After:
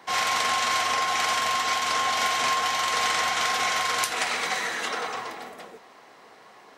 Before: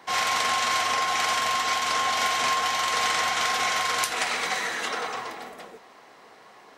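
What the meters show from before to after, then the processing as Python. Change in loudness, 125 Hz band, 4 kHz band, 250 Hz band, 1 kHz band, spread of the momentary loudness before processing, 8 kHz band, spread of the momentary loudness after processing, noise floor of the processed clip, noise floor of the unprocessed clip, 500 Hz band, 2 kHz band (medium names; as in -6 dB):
0.0 dB, 0.0 dB, 0.0 dB, 0.0 dB, 0.0 dB, 8 LU, 0.0 dB, 8 LU, -51 dBFS, -51 dBFS, 0.0 dB, 0.0 dB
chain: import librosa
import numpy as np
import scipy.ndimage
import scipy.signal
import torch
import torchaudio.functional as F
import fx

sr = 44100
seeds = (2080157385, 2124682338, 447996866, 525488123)

y = scipy.signal.sosfilt(scipy.signal.butter(2, 50.0, 'highpass', fs=sr, output='sos'), x)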